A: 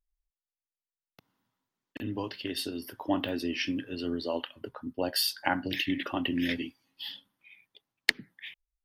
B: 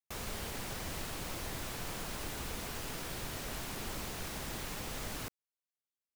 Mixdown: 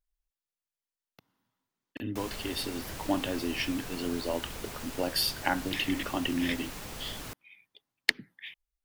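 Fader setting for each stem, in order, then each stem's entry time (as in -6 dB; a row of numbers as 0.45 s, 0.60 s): -0.5 dB, -0.5 dB; 0.00 s, 2.05 s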